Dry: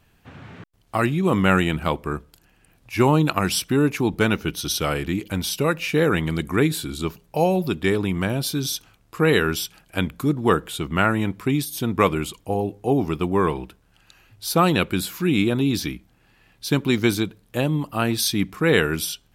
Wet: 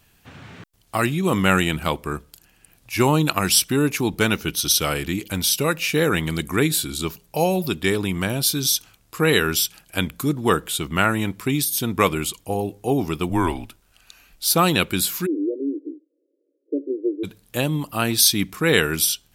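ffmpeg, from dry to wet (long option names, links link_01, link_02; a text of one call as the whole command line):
ffmpeg -i in.wav -filter_complex "[0:a]asettb=1/sr,asplit=3[link_01][link_02][link_03];[link_01]atrim=end=13.294[link_04];[link_02]atrim=start=13.29:end=14.5,asetpts=PTS-STARTPTS,afade=type=in:duration=0.004:curve=qsin,afade=type=out:start_time=1.206:duration=0.004:curve=qsin,afreqshift=-81[link_05];[link_03]atrim=start=14.496[link_06];[link_04][link_05]acrossfade=duration=0.004:curve1=hsin:curve2=qsin[link_07];[link_07][link_06]acrossfade=duration=0.004:curve1=qsin:curve2=hsin,asplit=3[link_08][link_09][link_10];[link_08]afade=type=out:start_time=15.25:duration=0.02[link_11];[link_09]asuperpass=centerf=400:order=20:qfactor=1.3,afade=type=in:start_time=15.25:duration=0.02,afade=type=out:start_time=17.23:duration=0.02[link_12];[link_10]afade=type=in:start_time=17.23:duration=0.02[link_13];[link_11][link_12][link_13]amix=inputs=3:normalize=0,highshelf=frequency=3300:gain=11,volume=-1dB" out.wav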